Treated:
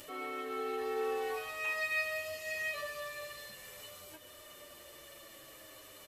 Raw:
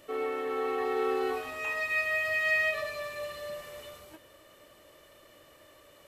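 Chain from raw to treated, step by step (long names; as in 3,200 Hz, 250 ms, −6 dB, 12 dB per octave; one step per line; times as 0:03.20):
high-shelf EQ 3,000 Hz +9.5 dB
upward compression, threshold −37 dBFS
barber-pole flanger 7.7 ms −0.49 Hz
level −4 dB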